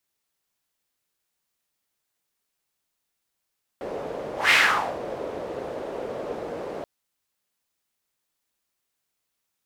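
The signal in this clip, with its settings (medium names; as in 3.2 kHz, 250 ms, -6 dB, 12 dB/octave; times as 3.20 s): whoosh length 3.03 s, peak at 0.71 s, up 0.17 s, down 0.50 s, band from 510 Hz, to 2.2 kHz, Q 2.9, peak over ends 16 dB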